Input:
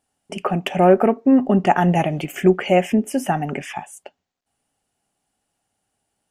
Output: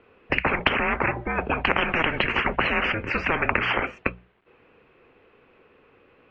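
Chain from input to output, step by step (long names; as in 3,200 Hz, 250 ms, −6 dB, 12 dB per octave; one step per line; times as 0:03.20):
single-sideband voice off tune −330 Hz 410–3,100 Hz
mains-hum notches 60/120/180 Hz
every bin compressed towards the loudest bin 10 to 1
level +2 dB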